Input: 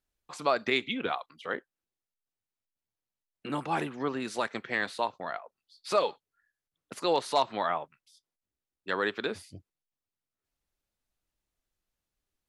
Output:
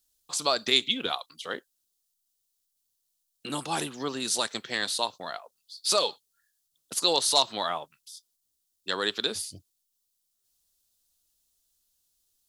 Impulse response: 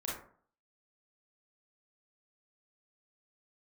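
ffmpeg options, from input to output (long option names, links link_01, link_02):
-af "aexciter=amount=7.1:drive=3.8:freq=3200,volume=-1dB"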